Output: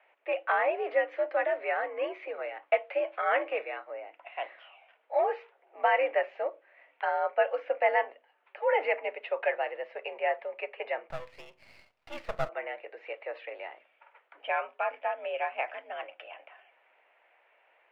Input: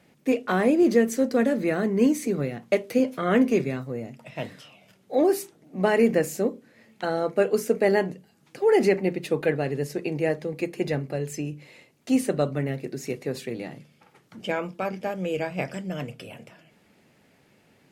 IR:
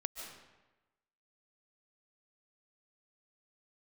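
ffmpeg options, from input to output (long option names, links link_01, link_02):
-filter_complex "[0:a]highpass=frequency=540:width_type=q:width=0.5412,highpass=frequency=540:width_type=q:width=1.307,lowpass=frequency=2700:width_type=q:width=0.5176,lowpass=frequency=2700:width_type=q:width=0.7071,lowpass=frequency=2700:width_type=q:width=1.932,afreqshift=71,asettb=1/sr,asplit=3[link_01][link_02][link_03];[link_01]atrim=end=11.104[link_04];[link_02]atrim=start=11.1:end=12.49,asetpts=PTS-STARTPTS,afade=type=in:duration=0.004:curve=qsin,afade=type=out:start_time=1.386:duration=0.004:curve=qsin,aeval=exprs='max(val(0),0)':channel_layout=same[link_05];[link_03]atrim=start=12.486[link_06];[link_04][link_05]acrossfade=duration=0.004:curve1=hsin:curve2=qsin[link_07];[link_07][link_06]acrossfade=duration=0.004:curve1=qsin:curve2=hsin"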